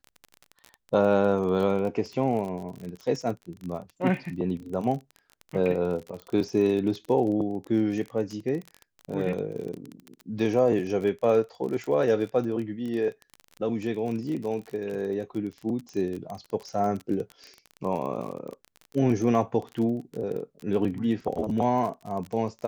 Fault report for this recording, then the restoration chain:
crackle 31/s -32 dBFS
6.22 pop -27 dBFS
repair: de-click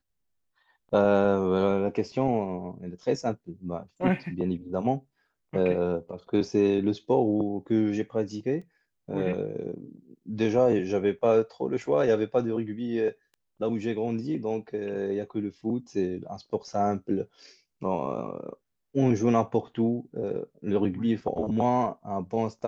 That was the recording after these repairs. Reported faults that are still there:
none

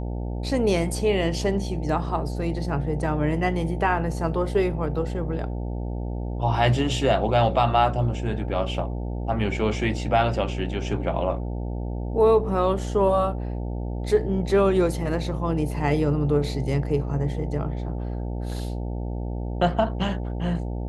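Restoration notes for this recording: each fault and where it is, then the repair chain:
buzz 60 Hz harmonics 15 -29 dBFS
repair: de-hum 60 Hz, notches 15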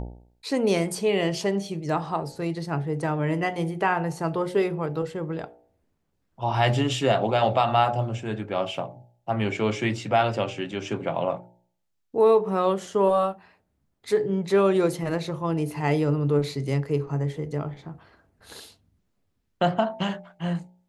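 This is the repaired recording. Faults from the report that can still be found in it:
none

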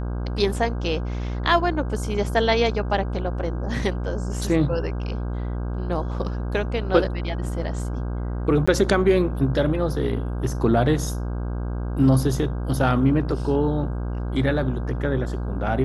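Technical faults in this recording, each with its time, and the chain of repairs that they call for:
buzz 60 Hz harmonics 27 -27 dBFS
8.66–8.68 gap 15 ms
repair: de-hum 60 Hz, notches 27; interpolate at 8.66, 15 ms

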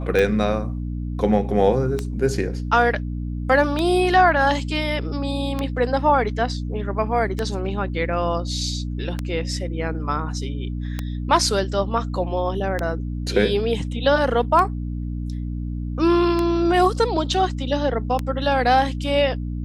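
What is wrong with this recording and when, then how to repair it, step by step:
hum 60 Hz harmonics 5 -27 dBFS
tick 33 1/3 rpm -10 dBFS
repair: de-click; de-hum 60 Hz, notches 5

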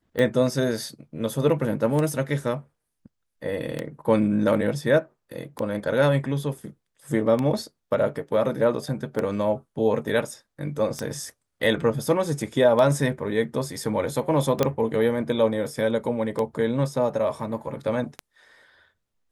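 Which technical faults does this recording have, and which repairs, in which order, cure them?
tick 33 1/3 rpm -14 dBFS
14.63 pop -7 dBFS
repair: de-click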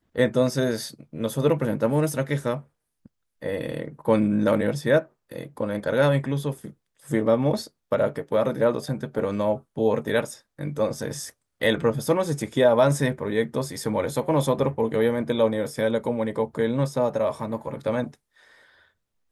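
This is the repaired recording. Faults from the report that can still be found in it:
none

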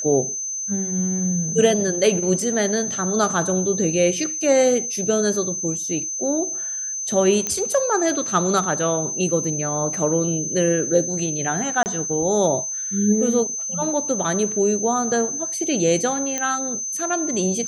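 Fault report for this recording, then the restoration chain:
tone 6200 Hz -25 dBFS
7.47 pop -9 dBFS
11.83–11.86 gap 29 ms
16.38 pop -10 dBFS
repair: de-click; notch 6200 Hz, Q 30; interpolate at 11.83, 29 ms

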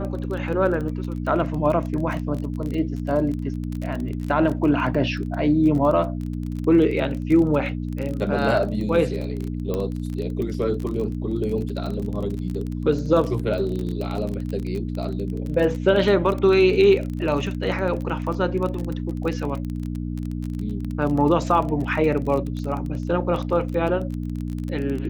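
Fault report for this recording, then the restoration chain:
crackle 26/s -27 dBFS
hum 60 Hz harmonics 5 -28 dBFS
9.74 pop -14 dBFS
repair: de-click; de-hum 60 Hz, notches 5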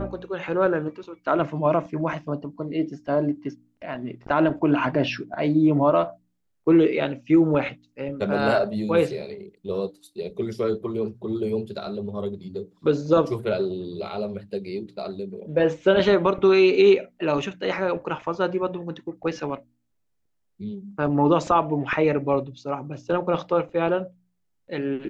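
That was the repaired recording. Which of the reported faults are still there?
none

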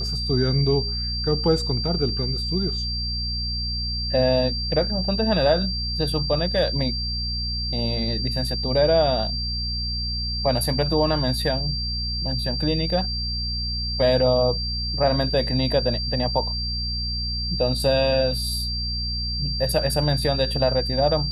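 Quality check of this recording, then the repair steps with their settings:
hum 60 Hz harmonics 4 -29 dBFS
tone 4700 Hz -27 dBFS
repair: de-hum 60 Hz, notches 4; notch 4700 Hz, Q 30

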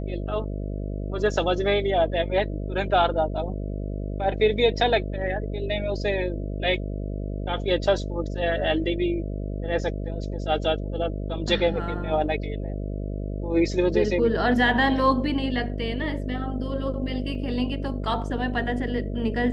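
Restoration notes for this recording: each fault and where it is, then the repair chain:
buzz 50 Hz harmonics 13 -30 dBFS
17.35 gap 2.1 ms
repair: de-hum 50 Hz, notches 13; interpolate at 17.35, 2.1 ms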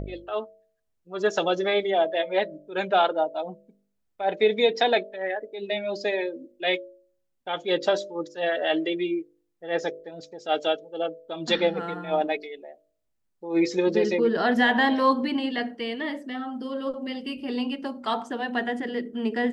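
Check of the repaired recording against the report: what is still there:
none

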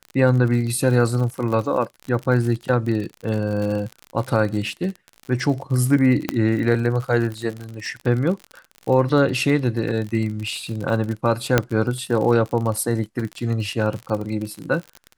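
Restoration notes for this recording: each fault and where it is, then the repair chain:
crackle 52/s -27 dBFS
6.29 pop -6 dBFS
11.58 pop -1 dBFS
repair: de-click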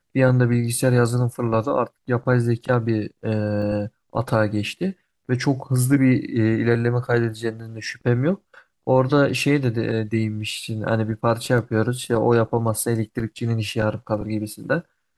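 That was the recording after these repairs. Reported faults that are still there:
11.58 pop

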